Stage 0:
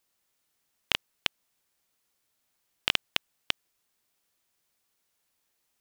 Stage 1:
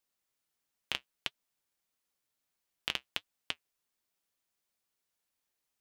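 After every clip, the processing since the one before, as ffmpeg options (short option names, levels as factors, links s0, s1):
-af "flanger=delay=3.1:depth=4.7:regen=-63:speed=1.5:shape=triangular,volume=0.631"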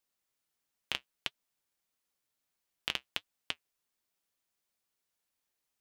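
-af anull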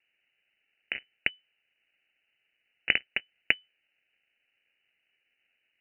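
-af "acrusher=samples=23:mix=1:aa=0.000001,lowpass=f=2600:t=q:w=0.5098,lowpass=f=2600:t=q:w=0.6013,lowpass=f=2600:t=q:w=0.9,lowpass=f=2600:t=q:w=2.563,afreqshift=-3000,volume=2.66"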